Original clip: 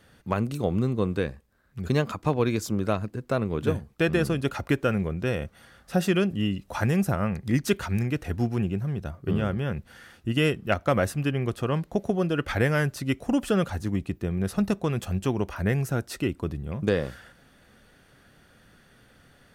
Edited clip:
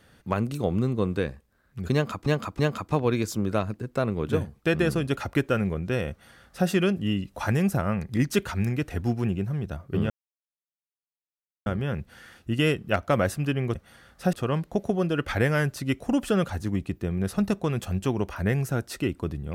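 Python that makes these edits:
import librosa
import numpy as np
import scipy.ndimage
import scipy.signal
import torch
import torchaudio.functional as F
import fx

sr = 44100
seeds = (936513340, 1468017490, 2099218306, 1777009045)

y = fx.edit(x, sr, fx.repeat(start_s=1.93, length_s=0.33, count=3),
    fx.duplicate(start_s=5.44, length_s=0.58, to_s=11.53),
    fx.insert_silence(at_s=9.44, length_s=1.56), tone=tone)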